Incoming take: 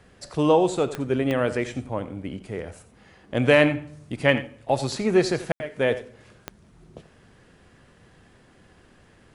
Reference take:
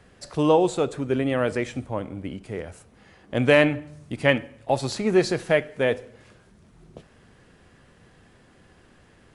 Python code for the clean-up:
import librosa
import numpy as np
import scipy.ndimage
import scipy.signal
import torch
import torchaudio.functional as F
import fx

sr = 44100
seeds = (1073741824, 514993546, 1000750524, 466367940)

y = fx.fix_declick_ar(x, sr, threshold=10.0)
y = fx.fix_ambience(y, sr, seeds[0], print_start_s=8.73, print_end_s=9.23, start_s=5.52, end_s=5.6)
y = fx.fix_echo_inverse(y, sr, delay_ms=88, level_db=-14.5)